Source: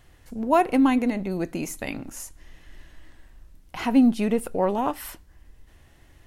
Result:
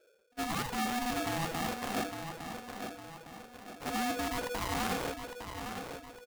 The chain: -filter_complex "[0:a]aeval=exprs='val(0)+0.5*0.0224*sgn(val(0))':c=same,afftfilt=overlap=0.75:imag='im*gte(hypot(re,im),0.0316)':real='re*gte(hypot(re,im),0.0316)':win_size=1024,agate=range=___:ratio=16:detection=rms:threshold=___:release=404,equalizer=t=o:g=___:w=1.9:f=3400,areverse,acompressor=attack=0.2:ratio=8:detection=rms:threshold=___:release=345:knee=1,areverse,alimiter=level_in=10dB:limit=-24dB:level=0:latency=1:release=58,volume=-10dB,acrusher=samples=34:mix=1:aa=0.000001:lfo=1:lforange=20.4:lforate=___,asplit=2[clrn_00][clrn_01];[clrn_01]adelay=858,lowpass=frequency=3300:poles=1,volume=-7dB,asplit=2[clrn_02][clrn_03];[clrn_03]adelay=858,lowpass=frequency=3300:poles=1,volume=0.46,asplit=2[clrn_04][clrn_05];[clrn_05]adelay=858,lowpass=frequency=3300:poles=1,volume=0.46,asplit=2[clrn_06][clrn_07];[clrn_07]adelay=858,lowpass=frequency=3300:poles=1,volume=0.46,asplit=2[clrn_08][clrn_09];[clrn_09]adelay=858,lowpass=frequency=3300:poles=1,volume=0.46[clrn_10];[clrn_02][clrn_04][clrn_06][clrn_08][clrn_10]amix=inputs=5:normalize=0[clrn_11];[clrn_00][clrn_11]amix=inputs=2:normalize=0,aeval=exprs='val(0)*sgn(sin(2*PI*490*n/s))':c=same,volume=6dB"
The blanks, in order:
-33dB, -27dB, -7.5, -30dB, 2.6